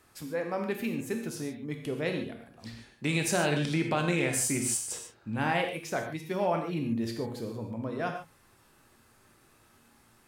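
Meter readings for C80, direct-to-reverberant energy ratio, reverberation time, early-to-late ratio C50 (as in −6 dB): 8.5 dB, 3.0 dB, non-exponential decay, 6.0 dB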